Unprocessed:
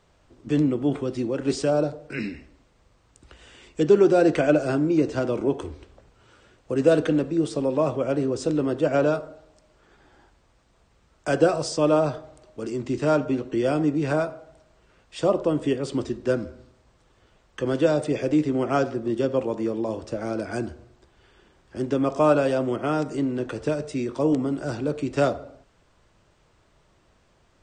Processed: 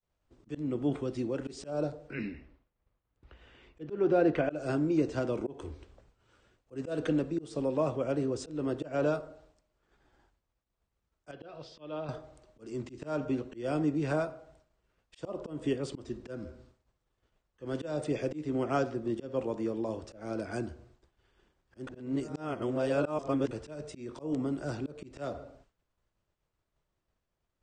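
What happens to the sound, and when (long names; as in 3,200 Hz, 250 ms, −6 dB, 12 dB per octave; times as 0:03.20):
0:02.10–0:04.51: low-pass filter 2,900 Hz
0:11.31–0:12.09: transistor ladder low-pass 3,900 Hz, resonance 55%
0:21.87–0:23.51: reverse
whole clip: downward expander −50 dBFS; low-shelf EQ 67 Hz +6 dB; volume swells 210 ms; level −7 dB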